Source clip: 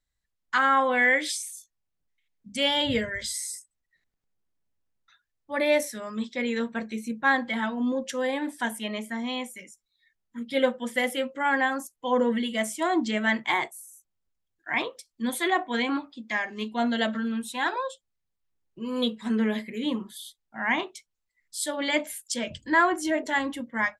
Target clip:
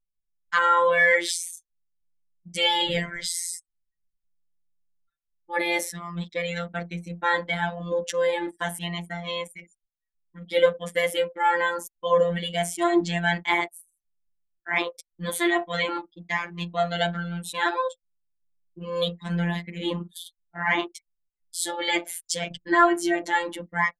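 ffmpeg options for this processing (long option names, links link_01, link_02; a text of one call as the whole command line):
ffmpeg -i in.wav -af "anlmdn=0.251,afftfilt=real='hypot(re,im)*cos(PI*b)':imag='0':win_size=1024:overlap=0.75,acontrast=54" out.wav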